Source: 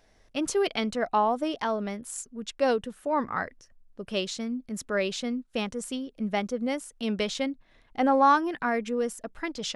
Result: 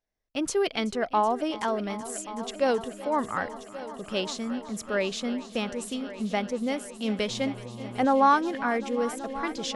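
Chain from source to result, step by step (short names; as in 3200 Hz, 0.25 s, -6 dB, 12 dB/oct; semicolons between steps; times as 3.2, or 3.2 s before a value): gate -50 dBFS, range -25 dB; multi-head echo 0.377 s, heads all three, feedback 65%, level -19 dB; 7.29–8.04 buzz 120 Hz, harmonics 10, -42 dBFS -6 dB/oct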